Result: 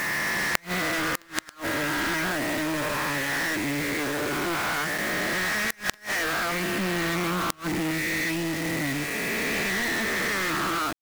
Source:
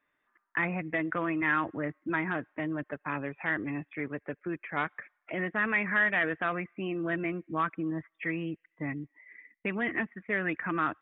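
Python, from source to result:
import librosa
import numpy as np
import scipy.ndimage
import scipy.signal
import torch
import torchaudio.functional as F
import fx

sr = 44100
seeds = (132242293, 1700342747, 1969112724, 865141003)

y = fx.spec_swells(x, sr, rise_s=2.8)
y = fx.peak_eq(y, sr, hz=200.0, db=10.0, octaves=0.62, at=(6.78, 7.91))
y = fx.quant_companded(y, sr, bits=2)
y = fx.gate_flip(y, sr, shuts_db=-10.0, range_db=-27)
y = y * 10.0 ** (-1.0 / 20.0)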